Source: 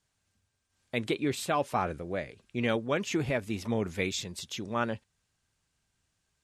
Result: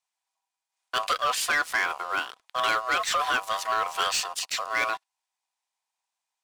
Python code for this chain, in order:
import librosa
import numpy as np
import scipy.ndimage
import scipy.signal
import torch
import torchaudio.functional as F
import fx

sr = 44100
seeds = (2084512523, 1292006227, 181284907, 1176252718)

y = x * np.sin(2.0 * np.pi * 880.0 * np.arange(len(x)) / sr)
y = scipy.signal.sosfilt(scipy.signal.bessel(2, 1100.0, 'highpass', norm='mag', fs=sr, output='sos'), y)
y = fx.leveller(y, sr, passes=3)
y = y * 10.0 ** (2.0 / 20.0)